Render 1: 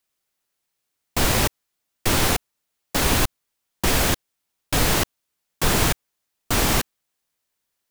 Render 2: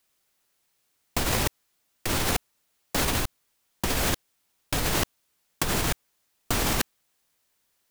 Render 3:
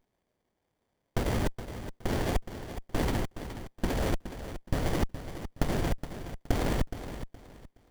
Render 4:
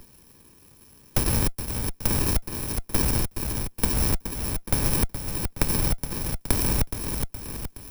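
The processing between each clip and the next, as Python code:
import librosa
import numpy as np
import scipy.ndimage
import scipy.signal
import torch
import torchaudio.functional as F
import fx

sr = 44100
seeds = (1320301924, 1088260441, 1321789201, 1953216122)

y1 = fx.over_compress(x, sr, threshold_db=-25.0, ratio=-1.0)
y2 = fx.echo_feedback(y1, sr, ms=419, feedback_pct=27, wet_db=-11.0)
y2 = fx.running_max(y2, sr, window=33)
y2 = y2 * 10.0 ** (-1.0 / 20.0)
y3 = fx.bit_reversed(y2, sr, seeds[0], block=64)
y3 = fx.band_squash(y3, sr, depth_pct=70)
y3 = y3 * 10.0 ** (5.5 / 20.0)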